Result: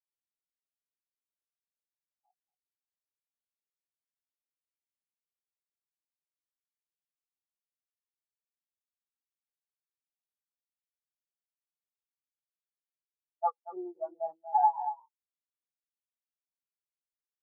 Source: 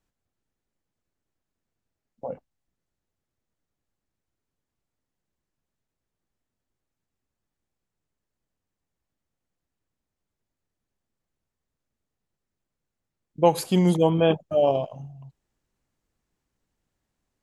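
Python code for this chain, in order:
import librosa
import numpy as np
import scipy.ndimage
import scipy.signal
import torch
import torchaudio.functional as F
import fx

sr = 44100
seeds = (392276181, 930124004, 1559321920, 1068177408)

y = fx.cvsd(x, sr, bps=16000)
y = fx.formant_shift(y, sr, semitones=6)
y = y + 10.0 ** (-5.0 / 20.0) * np.pad(y, (int(233 * sr / 1000.0), 0))[:len(y)]
y = fx.tube_stage(y, sr, drive_db=19.0, bias=0.8)
y = fx.rider(y, sr, range_db=10, speed_s=0.5)
y = fx.highpass(y, sr, hz=1100.0, slope=6)
y = fx.spectral_expand(y, sr, expansion=4.0)
y = y * 10.0 ** (4.0 / 20.0)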